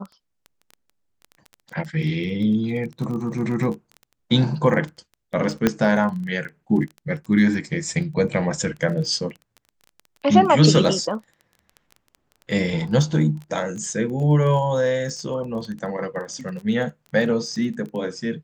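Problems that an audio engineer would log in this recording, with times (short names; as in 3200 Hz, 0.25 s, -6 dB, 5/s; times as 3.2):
crackle 15/s -30 dBFS
5.67 pop -4 dBFS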